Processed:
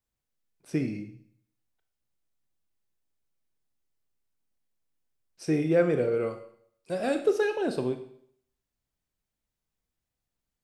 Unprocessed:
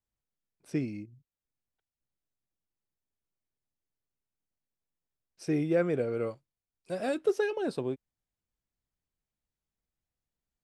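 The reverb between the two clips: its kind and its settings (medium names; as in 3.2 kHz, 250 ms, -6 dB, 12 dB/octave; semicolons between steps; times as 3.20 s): Schroeder reverb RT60 0.63 s, combs from 25 ms, DRR 7 dB; trim +3 dB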